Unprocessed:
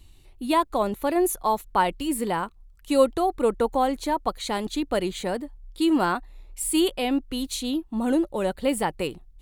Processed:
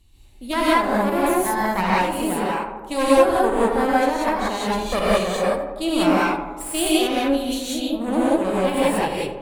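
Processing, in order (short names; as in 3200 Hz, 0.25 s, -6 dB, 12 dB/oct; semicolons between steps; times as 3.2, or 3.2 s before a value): 4.61–5.44 comb 1.7 ms, depth 99%; added harmonics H 4 -9 dB, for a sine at -7 dBFS; on a send: tape echo 82 ms, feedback 76%, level -7 dB, low-pass 1800 Hz; on the sum: non-linear reverb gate 0.21 s rising, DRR -7.5 dB; gain -6 dB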